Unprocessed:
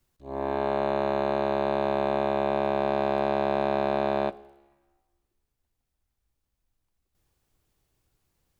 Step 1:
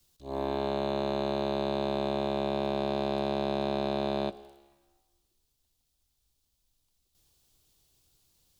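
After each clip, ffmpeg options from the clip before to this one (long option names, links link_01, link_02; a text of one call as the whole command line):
ffmpeg -i in.wav -filter_complex "[0:a]highshelf=frequency=2700:width_type=q:width=1.5:gain=9,acrossover=split=390[link_01][link_02];[link_02]acompressor=threshold=-30dB:ratio=5[link_03];[link_01][link_03]amix=inputs=2:normalize=0" out.wav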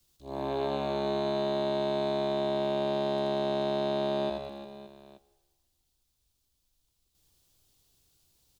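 ffmpeg -i in.wav -af "aecho=1:1:80|192|348.8|568.3|875.6:0.631|0.398|0.251|0.158|0.1,volume=-2dB" out.wav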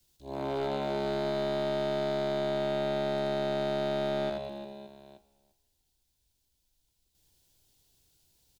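ffmpeg -i in.wav -filter_complex "[0:a]asuperstop=centerf=1200:order=4:qfactor=5.7,aeval=exprs='clip(val(0),-1,0.0398)':channel_layout=same,asplit=2[link_01][link_02];[link_02]adelay=344,volume=-19dB,highshelf=frequency=4000:gain=-7.74[link_03];[link_01][link_03]amix=inputs=2:normalize=0" out.wav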